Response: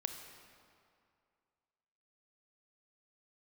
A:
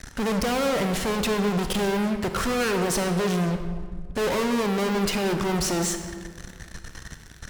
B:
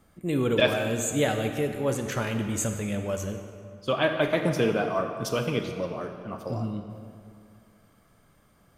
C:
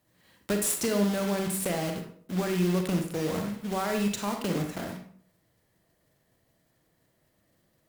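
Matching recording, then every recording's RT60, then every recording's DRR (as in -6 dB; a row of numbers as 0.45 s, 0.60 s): B; 1.8 s, 2.4 s, 0.60 s; 6.5 dB, 5.5 dB, 4.0 dB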